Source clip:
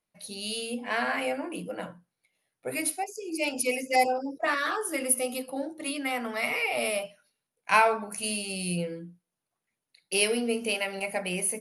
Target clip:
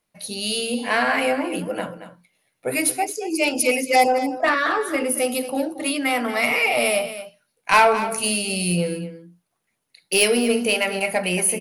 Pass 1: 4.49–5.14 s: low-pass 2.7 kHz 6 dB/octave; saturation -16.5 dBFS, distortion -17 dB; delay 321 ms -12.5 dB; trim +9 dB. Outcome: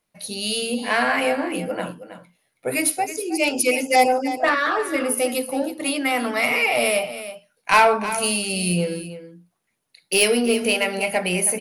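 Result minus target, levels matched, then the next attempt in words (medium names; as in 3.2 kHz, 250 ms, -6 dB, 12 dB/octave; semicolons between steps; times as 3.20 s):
echo 93 ms late
4.49–5.14 s: low-pass 2.7 kHz 6 dB/octave; saturation -16.5 dBFS, distortion -17 dB; delay 228 ms -12.5 dB; trim +9 dB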